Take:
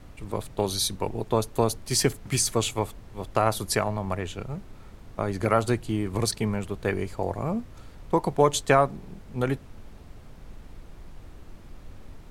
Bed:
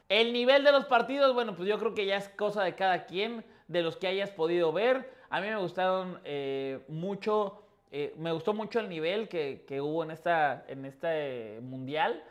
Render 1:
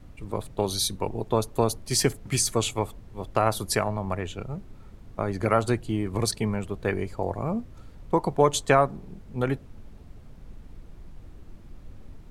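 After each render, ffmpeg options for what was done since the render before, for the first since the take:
ffmpeg -i in.wav -af "afftdn=noise_reduction=6:noise_floor=-47" out.wav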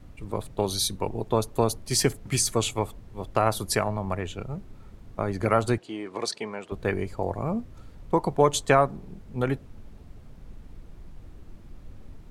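ffmpeg -i in.wav -filter_complex "[0:a]asettb=1/sr,asplit=3[link_01][link_02][link_03];[link_01]atrim=end=5.784[link_04];[link_02]atrim=start=5.78:end=6.72,asetpts=PTS-STARTPTS,afade=type=in:duration=0.004:curve=qsin,afade=type=out:start_time=0.936:duration=0.004:curve=qsin,highpass=400,lowpass=6200[link_05];[link_03]atrim=start=6.716[link_06];[link_04][link_05]acrossfade=duration=0.004:curve1=hsin:curve2=qsin[link_07];[link_07][link_06]acrossfade=duration=0.004:curve1=qsin:curve2=hsin" out.wav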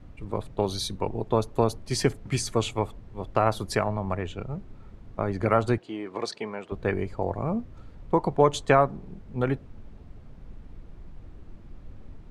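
ffmpeg -i in.wav -af "aemphasis=mode=reproduction:type=50fm" out.wav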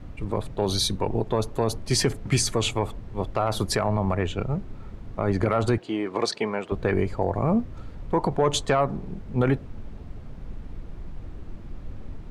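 ffmpeg -i in.wav -af "acontrast=80,alimiter=limit=-12dB:level=0:latency=1:release=50" out.wav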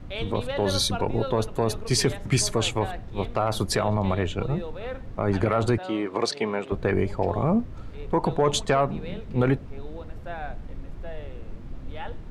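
ffmpeg -i in.wav -i bed.wav -filter_complex "[1:a]volume=-9dB[link_01];[0:a][link_01]amix=inputs=2:normalize=0" out.wav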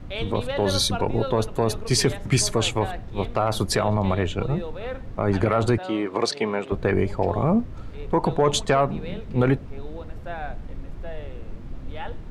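ffmpeg -i in.wav -af "volume=2dB" out.wav

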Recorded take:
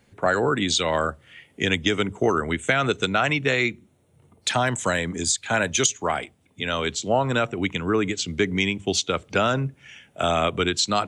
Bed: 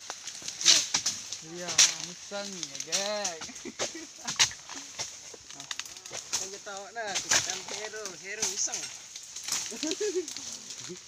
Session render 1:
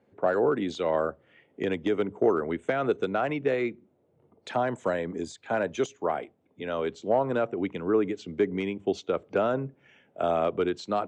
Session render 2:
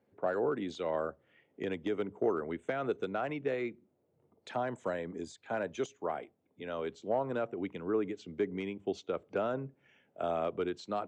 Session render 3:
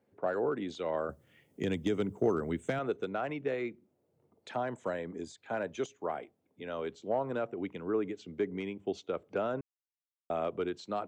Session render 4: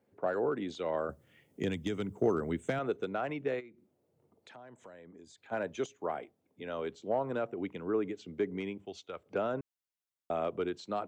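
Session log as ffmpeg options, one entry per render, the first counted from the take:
ffmpeg -i in.wav -af "volume=12.5dB,asoftclip=hard,volume=-12.5dB,bandpass=frequency=460:width_type=q:width=1:csg=0" out.wav
ffmpeg -i in.wav -af "volume=-7.5dB" out.wav
ffmpeg -i in.wav -filter_complex "[0:a]asettb=1/sr,asplit=3[link_01][link_02][link_03];[link_01]atrim=end=1.094[link_04];[link_02]atrim=start=1.09:end=2.79,asetpts=PTS-STARTPTS,afade=type=in:duration=0.004:curve=qsin,afade=type=out:start_time=1.696:duration=0.004:curve=qsin,bass=frequency=250:gain=11,treble=frequency=4000:gain=15[link_05];[link_03]atrim=start=2.786[link_06];[link_04][link_05]acrossfade=duration=0.004:curve1=hsin:curve2=qsin[link_07];[link_07][link_06]acrossfade=duration=0.004:curve1=qsin:curve2=hsin,asplit=3[link_08][link_09][link_10];[link_08]atrim=end=9.61,asetpts=PTS-STARTPTS,afade=type=out:start_time=9.606:duration=0.004:curve=hsin[link_11];[link_09]atrim=start=9.61:end=10.3,asetpts=PTS-STARTPTS,volume=0[link_12];[link_10]atrim=start=10.3,asetpts=PTS-STARTPTS,afade=type=in:duration=0.004:curve=hsin[link_13];[link_11][link_12][link_13]concat=n=3:v=0:a=1" out.wav
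ffmpeg -i in.wav -filter_complex "[0:a]asettb=1/sr,asplit=3[link_01][link_02][link_03];[link_01]atrim=end=1.704[link_04];[link_02]atrim=start=1.7:end=2.16,asetpts=PTS-STARTPTS,afade=type=in:duration=0.004:curve=qsin,afade=type=out:start_time=0.456:duration=0.004:curve=qsin,equalizer=frequency=470:width=0.6:gain=-5.5[link_05];[link_03]atrim=start=2.156[link_06];[link_04][link_05]acrossfade=duration=0.004:curve1=hsin:curve2=qsin[link_07];[link_07][link_06]acrossfade=duration=0.004:curve1=qsin:curve2=hsin,asplit=3[link_08][link_09][link_10];[link_08]afade=type=out:start_time=3.59:duration=0.02[link_11];[link_09]acompressor=threshold=-54dB:ratio=3:attack=3.2:release=140:knee=1:detection=peak,afade=type=in:start_time=3.59:duration=0.02,afade=type=out:start_time=5.51:duration=0.02[link_12];[link_10]afade=type=in:start_time=5.51:duration=0.02[link_13];[link_11][link_12][link_13]amix=inputs=3:normalize=0,asettb=1/sr,asplit=3[link_14][link_15][link_16];[link_14]atrim=end=8.854[link_17];[link_15]atrim=start=8.85:end=9.26,asetpts=PTS-STARTPTS,afade=type=in:duration=0.004:curve=qsin,afade=type=out:start_time=0.406:duration=0.004:curve=qsin,equalizer=frequency=280:width=0.42:gain=-11.5[link_18];[link_16]atrim=start=9.256[link_19];[link_17][link_18]acrossfade=duration=0.004:curve1=hsin:curve2=qsin[link_20];[link_20][link_19]acrossfade=duration=0.004:curve1=qsin:curve2=hsin" out.wav

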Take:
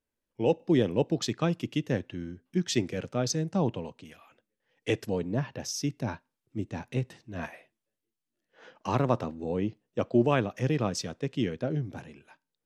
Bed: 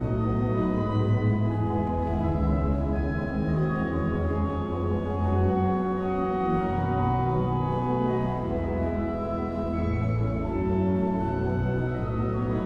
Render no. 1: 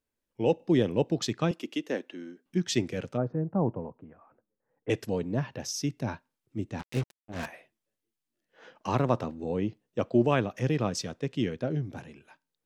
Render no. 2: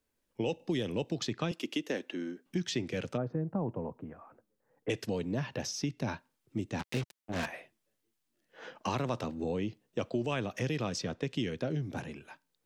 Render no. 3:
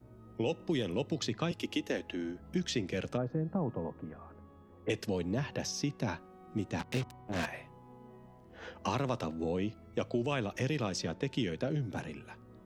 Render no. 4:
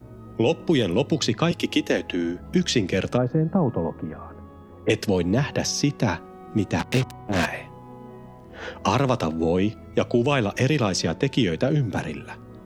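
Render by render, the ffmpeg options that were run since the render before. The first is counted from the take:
ffmpeg -i in.wav -filter_complex "[0:a]asettb=1/sr,asplit=3[link_01][link_02][link_03];[link_01]atrim=end=1.514[link_04];[link_02]atrim=start=1.51:end=2.46,asetpts=PTS-STARTPTS,afade=type=in:duration=0.004:curve=qsin,afade=type=out:start_time=0.946:duration=0.004:curve=qsin,highpass=frequency=260:width=0.5412,highpass=frequency=260:width=1.3066[link_05];[link_03]atrim=start=2.456[link_06];[link_04][link_05]acrossfade=duration=0.004:curve1=hsin:curve2=qsin[link_07];[link_07][link_06]acrossfade=duration=0.004:curve1=qsin:curve2=hsin,asplit=3[link_08][link_09][link_10];[link_08]afade=type=out:start_time=3.16:duration=0.02[link_11];[link_09]lowpass=frequency=1300:width=0.5412,lowpass=frequency=1300:width=1.3066,afade=type=in:start_time=3.16:duration=0.02,afade=type=out:start_time=4.89:duration=0.02[link_12];[link_10]afade=type=in:start_time=4.89:duration=0.02[link_13];[link_11][link_12][link_13]amix=inputs=3:normalize=0,asettb=1/sr,asplit=3[link_14][link_15][link_16];[link_14]atrim=end=6.794[link_17];[link_15]atrim=start=6.79:end=7.46,asetpts=PTS-STARTPTS,afade=type=in:duration=0.004:curve=qsin,afade=type=out:start_time=0.666:duration=0.004:curve=qsin,acrusher=bits=5:mix=0:aa=0.5[link_18];[link_16]atrim=start=7.456[link_19];[link_17][link_18]acrossfade=duration=0.004:curve1=hsin:curve2=qsin[link_20];[link_20][link_19]acrossfade=duration=0.004:curve1=qsin:curve2=hsin" out.wav
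ffmpeg -i in.wav -filter_complex "[0:a]asplit=2[link_01][link_02];[link_02]alimiter=limit=-22dB:level=0:latency=1:release=25,volume=-2dB[link_03];[link_01][link_03]amix=inputs=2:normalize=0,acrossover=split=110|2300|5900[link_04][link_05][link_06][link_07];[link_04]acompressor=threshold=-48dB:ratio=4[link_08];[link_05]acompressor=threshold=-32dB:ratio=4[link_09];[link_06]acompressor=threshold=-39dB:ratio=4[link_10];[link_07]acompressor=threshold=-54dB:ratio=4[link_11];[link_08][link_09][link_10][link_11]amix=inputs=4:normalize=0" out.wav
ffmpeg -i in.wav -i bed.wav -filter_complex "[1:a]volume=-28.5dB[link_01];[0:a][link_01]amix=inputs=2:normalize=0" out.wav
ffmpeg -i in.wav -af "volume=12dB" out.wav

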